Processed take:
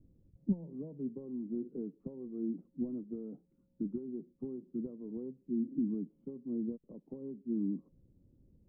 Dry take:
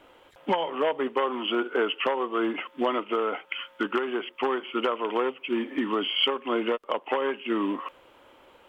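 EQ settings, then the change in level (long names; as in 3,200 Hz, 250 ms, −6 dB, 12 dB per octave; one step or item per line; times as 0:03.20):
transistor ladder low-pass 210 Hz, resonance 40%
low-shelf EQ 130 Hz +8 dB
+8.0 dB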